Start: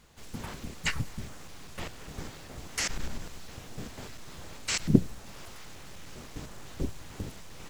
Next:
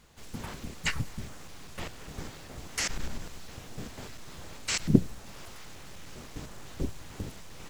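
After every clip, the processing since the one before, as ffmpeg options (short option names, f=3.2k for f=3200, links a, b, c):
-af anull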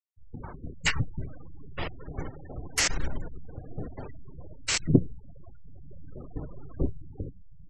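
-af "dynaudnorm=f=120:g=13:m=6dB,afftfilt=real='re*gte(hypot(re,im),0.02)':imag='im*gte(hypot(re,im),0.02)':win_size=1024:overlap=0.75,equalizer=f=210:t=o:w=0.21:g=-12.5"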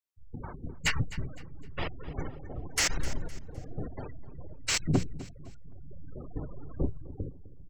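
-af "asoftclip=type=tanh:threshold=-18dB,aecho=1:1:256|512|768:0.141|0.0494|0.0173"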